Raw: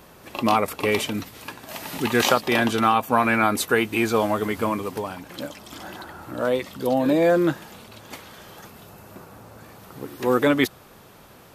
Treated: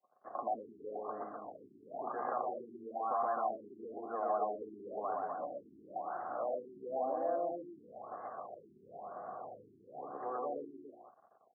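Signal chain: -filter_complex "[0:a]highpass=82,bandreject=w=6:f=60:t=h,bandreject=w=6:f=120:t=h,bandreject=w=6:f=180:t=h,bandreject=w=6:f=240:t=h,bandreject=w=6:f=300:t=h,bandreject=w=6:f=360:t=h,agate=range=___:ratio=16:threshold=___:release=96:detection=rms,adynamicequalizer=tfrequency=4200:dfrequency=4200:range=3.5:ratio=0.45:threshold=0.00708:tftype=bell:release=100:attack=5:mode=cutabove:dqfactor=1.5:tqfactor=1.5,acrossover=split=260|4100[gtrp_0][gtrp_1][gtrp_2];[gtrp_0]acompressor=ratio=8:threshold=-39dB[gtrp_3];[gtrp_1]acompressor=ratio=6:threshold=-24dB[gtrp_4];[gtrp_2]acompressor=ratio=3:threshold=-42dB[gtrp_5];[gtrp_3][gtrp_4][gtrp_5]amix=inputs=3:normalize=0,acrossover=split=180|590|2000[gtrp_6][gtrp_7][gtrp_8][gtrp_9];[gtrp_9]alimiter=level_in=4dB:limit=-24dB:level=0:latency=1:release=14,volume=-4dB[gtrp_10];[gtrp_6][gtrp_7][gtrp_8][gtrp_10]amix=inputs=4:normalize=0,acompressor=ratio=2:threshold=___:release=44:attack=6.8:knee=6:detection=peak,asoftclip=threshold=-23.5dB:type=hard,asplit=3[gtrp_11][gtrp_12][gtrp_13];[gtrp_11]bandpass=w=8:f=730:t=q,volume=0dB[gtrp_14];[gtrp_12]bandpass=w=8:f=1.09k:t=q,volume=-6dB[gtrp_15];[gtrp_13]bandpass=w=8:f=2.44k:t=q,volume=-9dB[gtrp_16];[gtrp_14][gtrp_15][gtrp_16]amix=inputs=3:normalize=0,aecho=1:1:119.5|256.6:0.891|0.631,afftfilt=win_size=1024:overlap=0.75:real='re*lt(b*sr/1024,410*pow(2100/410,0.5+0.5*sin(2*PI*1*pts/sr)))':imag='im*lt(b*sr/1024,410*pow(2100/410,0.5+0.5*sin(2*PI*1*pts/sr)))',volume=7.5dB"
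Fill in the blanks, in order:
-33dB, -46dB, -40dB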